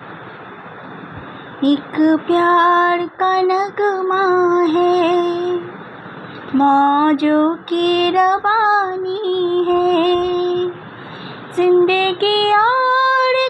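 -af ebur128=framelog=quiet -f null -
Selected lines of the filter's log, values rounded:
Integrated loudness:
  I:         -15.2 LUFS
  Threshold: -26.1 LUFS
Loudness range:
  LRA:         2.4 LU
  Threshold: -36.0 LUFS
  LRA low:   -17.2 LUFS
  LRA high:  -14.9 LUFS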